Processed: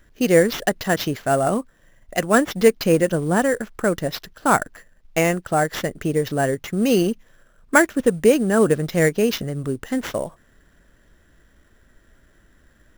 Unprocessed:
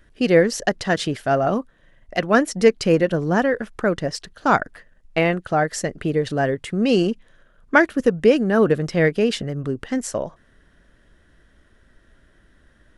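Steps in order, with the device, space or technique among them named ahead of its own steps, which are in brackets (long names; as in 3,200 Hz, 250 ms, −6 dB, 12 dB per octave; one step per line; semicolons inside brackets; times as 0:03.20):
early companding sampler (sample-rate reduction 9,100 Hz, jitter 0%; log-companded quantiser 8 bits)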